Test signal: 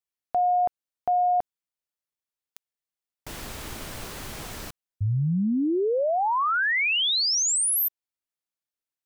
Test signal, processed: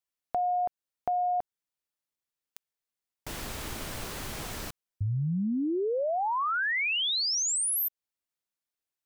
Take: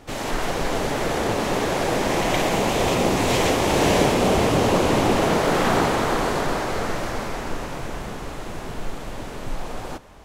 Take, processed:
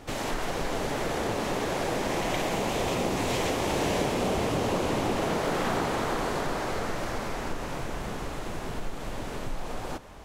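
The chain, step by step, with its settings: compressor 2:1, threshold -31 dBFS

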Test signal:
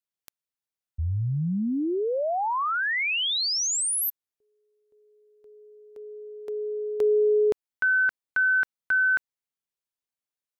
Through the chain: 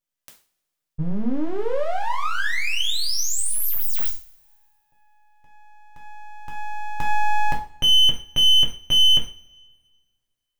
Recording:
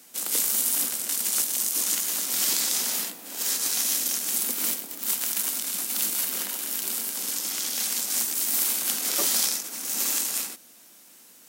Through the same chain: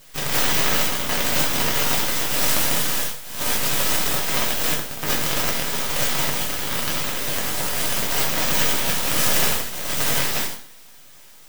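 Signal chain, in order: full-wave rectifier; two-slope reverb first 0.37 s, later 1.9 s, from -27 dB, DRR -1.5 dB; gain +3.5 dB

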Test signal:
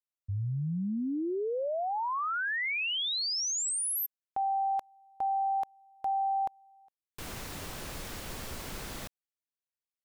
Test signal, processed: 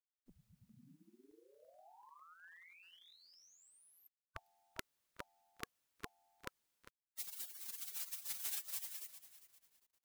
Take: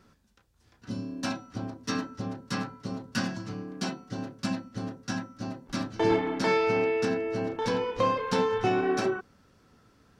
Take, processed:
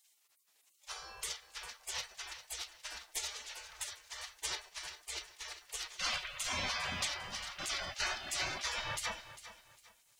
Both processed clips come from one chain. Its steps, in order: spectral gate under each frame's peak -30 dB weak; lo-fi delay 0.401 s, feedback 35%, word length 12-bit, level -13.5 dB; gain +11 dB

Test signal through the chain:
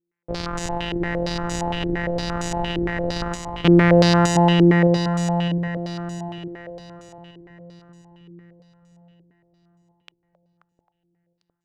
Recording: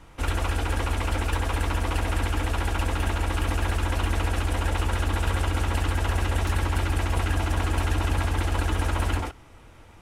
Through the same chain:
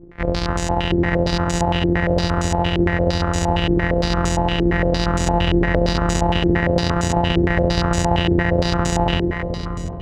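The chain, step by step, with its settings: sample sorter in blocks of 256 samples; split-band echo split 610 Hz, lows 0.707 s, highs 0.266 s, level -5 dB; stepped low-pass 8.7 Hz 360–7100 Hz; gain +3 dB

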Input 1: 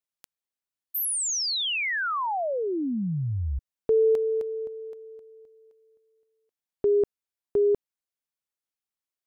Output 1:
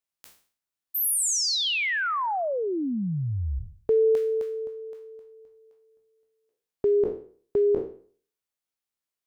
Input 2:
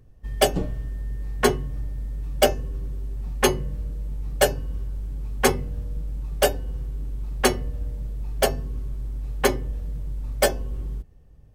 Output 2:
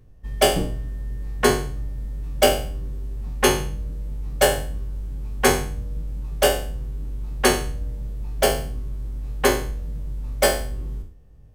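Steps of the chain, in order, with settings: spectral trails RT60 0.47 s

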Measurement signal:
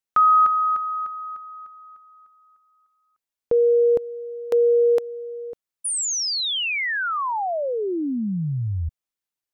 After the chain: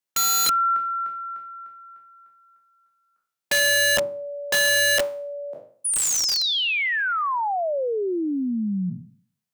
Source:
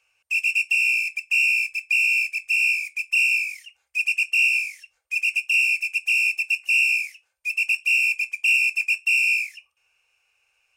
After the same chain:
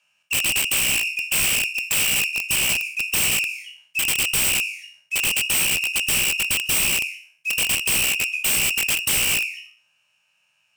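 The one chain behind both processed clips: spectral trails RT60 0.50 s; frequency shift +100 Hz; wrapped overs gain 16 dB

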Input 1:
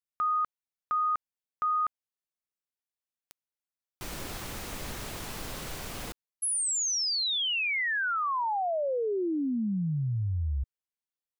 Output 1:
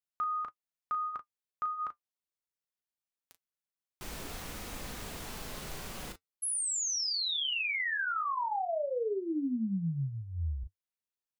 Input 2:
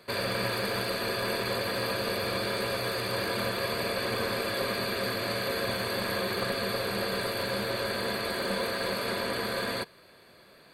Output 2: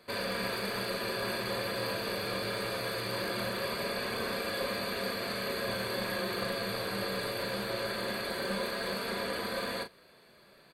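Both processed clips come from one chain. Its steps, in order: flange 0.21 Hz, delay 3.8 ms, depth 3 ms, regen -64%; doubler 36 ms -8 dB

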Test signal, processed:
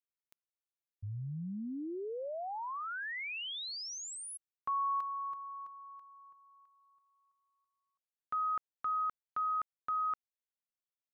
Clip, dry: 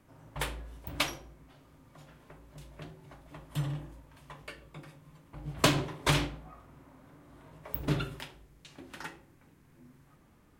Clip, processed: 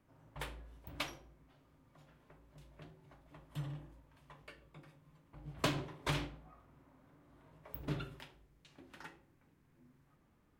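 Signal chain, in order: bell 9800 Hz -5 dB 1.7 oct; gain -9 dB

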